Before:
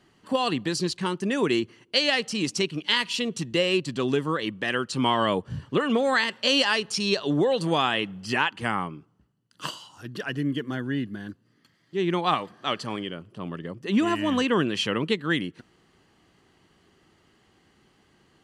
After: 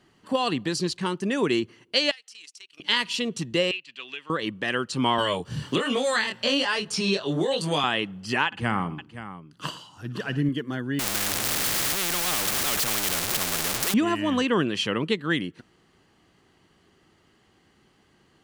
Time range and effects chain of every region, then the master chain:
2.11–2.80 s: Bessel high-pass 2 kHz + compression 3:1, threshold -44 dBFS + transient shaper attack -5 dB, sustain -12 dB
3.71–4.30 s: band-pass filter 2.6 kHz, Q 3.3 + three bands compressed up and down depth 70%
5.18–7.84 s: treble shelf 5.5 kHz +4 dB + chorus 1.2 Hz, delay 19.5 ms, depth 7.1 ms + three bands compressed up and down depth 100%
8.46–10.49 s: tone controls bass +6 dB, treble -3 dB + multi-tap echo 58/62/113/522 ms -17.5/-20/-18/-12.5 dB
10.99–13.94 s: jump at every zero crossing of -23 dBFS + band-stop 960 Hz, Q 8.1 + spectrum-flattening compressor 4:1
whole clip: none

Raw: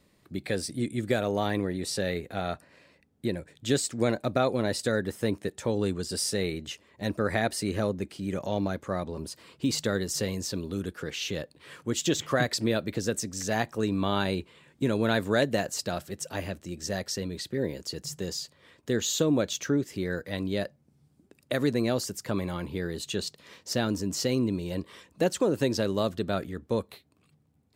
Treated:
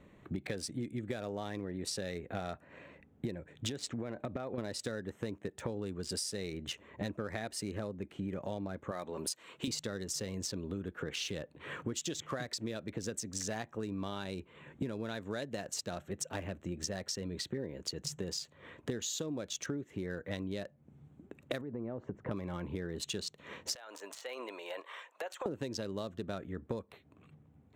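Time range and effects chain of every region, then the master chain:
3.69–4.58 s: low-pass 5.2 kHz + compression 4:1, threshold -31 dBFS
8.91–9.68 s: high-pass 560 Hz 6 dB/octave + treble shelf 3.5 kHz +9.5 dB
21.61–22.31 s: low-pass 1.1 kHz + compression 3:1, threshold -34 dBFS
23.75–25.46 s: high-pass 650 Hz 24 dB/octave + compression 12:1, threshold -40 dBFS
whole clip: local Wiener filter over 9 samples; dynamic bell 6.1 kHz, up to +5 dB, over -47 dBFS, Q 0.84; compression 16:1, threshold -41 dBFS; trim +6.5 dB

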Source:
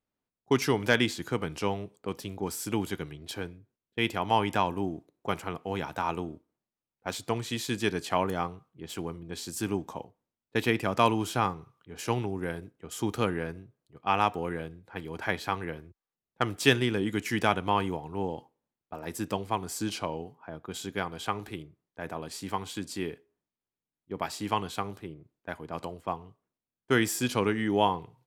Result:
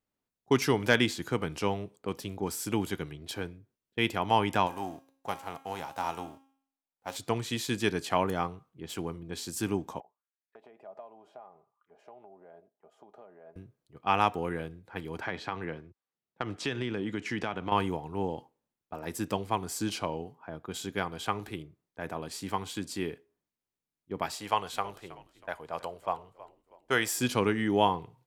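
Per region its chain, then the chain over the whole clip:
4.66–7.15 s: formants flattened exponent 0.6 + peaking EQ 790 Hz +10.5 dB 1.1 oct + feedback comb 270 Hz, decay 0.58 s, mix 70%
10.00–13.56 s: comb 4.9 ms, depth 40% + compression 12:1, threshold -32 dBFS + auto-wah 660–2000 Hz, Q 6, down, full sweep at -42 dBFS
15.21–17.72 s: high-pass 96 Hz + compression 4:1, threshold -28 dBFS + distance through air 98 m
24.35–27.18 s: resonant low shelf 410 Hz -8 dB, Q 1.5 + frequency-shifting echo 320 ms, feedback 38%, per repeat -67 Hz, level -18 dB
whole clip: none

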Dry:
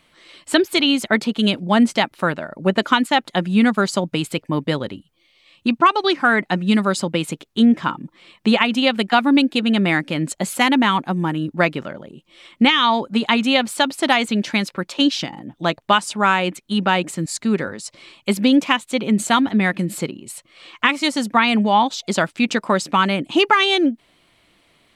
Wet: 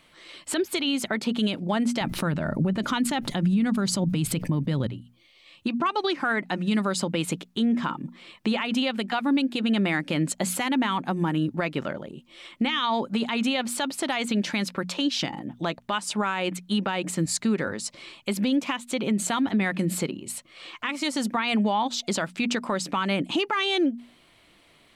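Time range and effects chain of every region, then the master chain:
2.01–4.87 s: tone controls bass +15 dB, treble +2 dB + band-stop 7.3 kHz, Q 22 + level flattener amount 50%
whole clip: hum notches 60/120/180/240 Hz; compression, threshold -19 dBFS; peak limiter -16 dBFS

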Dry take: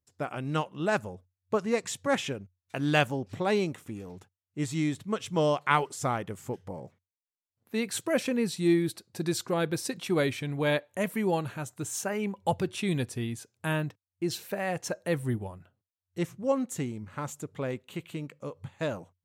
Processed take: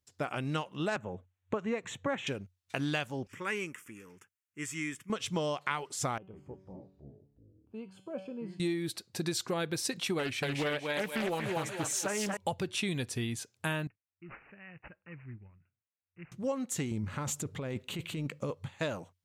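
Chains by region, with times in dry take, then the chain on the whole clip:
0.96–2.27 s: boxcar filter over 9 samples + three bands compressed up and down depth 40%
3.27–5.10 s: high-pass 660 Hz 6 dB/octave + static phaser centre 1.7 kHz, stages 4
6.18–8.60 s: boxcar filter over 23 samples + feedback comb 190 Hz, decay 0.61 s, mix 80% + ever faster or slower copies 153 ms, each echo -5 st, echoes 2, each echo -6 dB
10.19–12.37 s: thinning echo 235 ms, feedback 44%, high-pass 360 Hz, level -3 dB + loudspeaker Doppler distortion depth 0.39 ms
13.87–16.32 s: amplifier tone stack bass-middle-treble 6-0-2 + careless resampling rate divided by 8×, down none, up filtered
16.91–18.55 s: bass shelf 330 Hz +7.5 dB + compressor with a negative ratio -34 dBFS
whole clip: peaking EQ 3.9 kHz +6 dB 2.7 oct; compression 10:1, threshold -29 dBFS

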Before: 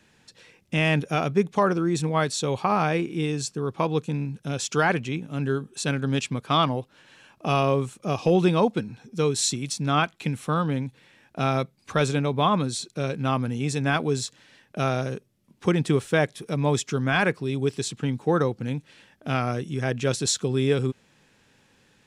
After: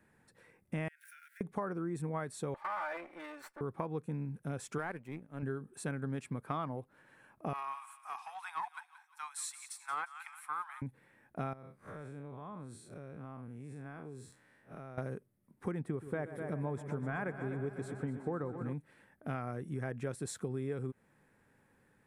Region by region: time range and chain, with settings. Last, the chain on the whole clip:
0.88–1.41 s: jump at every zero crossing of -35.5 dBFS + Chebyshev high-pass 1.4 kHz, order 10 + compression 10:1, threshold -42 dBFS
2.54–3.61 s: comb filter that takes the minimum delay 3.4 ms + hard clipper -22 dBFS + three-band isolator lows -23 dB, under 600 Hz, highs -15 dB, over 5.6 kHz
4.78–5.43 s: bass shelf 79 Hz -10 dB + power-law waveshaper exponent 1.4
7.53–10.82 s: steep high-pass 810 Hz 72 dB/octave + feedback echo behind a high-pass 177 ms, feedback 44%, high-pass 1.5 kHz, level -12 dB + loudspeaker Doppler distortion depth 0.12 ms
11.53–14.98 s: spectral blur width 119 ms + compression 8:1, threshold -36 dBFS
15.82–18.73 s: treble shelf 2.7 kHz -8.5 dB + multi-head delay 125 ms, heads first and second, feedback 65%, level -15.5 dB
whole clip: high-order bell 4.3 kHz -15 dB; compression, threshold -27 dBFS; trim -7 dB

